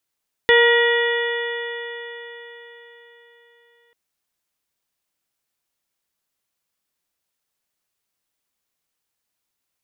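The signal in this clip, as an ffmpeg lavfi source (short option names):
-f lavfi -i "aevalsrc='0.224*pow(10,-3*t/4.28)*sin(2*PI*470.47*t)+0.075*pow(10,-3*t/4.28)*sin(2*PI*943.75*t)+0.0562*pow(10,-3*t/4.28)*sin(2*PI*1422.63*t)+0.224*pow(10,-3*t/4.28)*sin(2*PI*1909.84*t)+0.0355*pow(10,-3*t/4.28)*sin(2*PI*2408.03*t)+0.0596*pow(10,-3*t/4.28)*sin(2*PI*2919.76*t)+0.0794*pow(10,-3*t/4.28)*sin(2*PI*3447.44*t)':d=3.44:s=44100"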